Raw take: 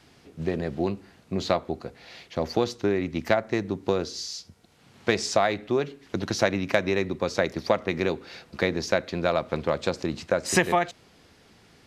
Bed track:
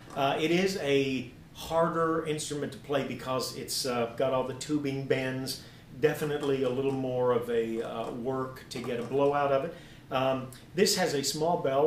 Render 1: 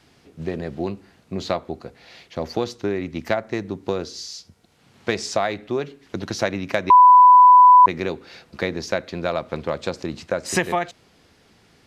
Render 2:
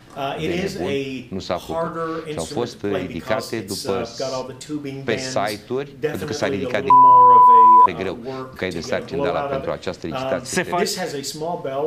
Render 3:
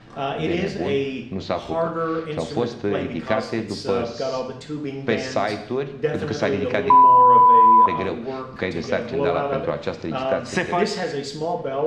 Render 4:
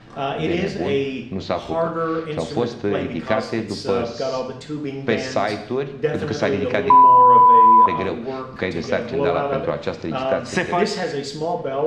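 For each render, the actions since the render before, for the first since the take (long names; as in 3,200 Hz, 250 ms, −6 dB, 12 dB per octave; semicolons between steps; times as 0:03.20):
0:06.90–0:07.86: beep over 996 Hz −6 dBFS
mix in bed track +2 dB
high-frequency loss of the air 120 metres; reverb whose tail is shaped and stops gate 260 ms falling, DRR 8 dB
level +1.5 dB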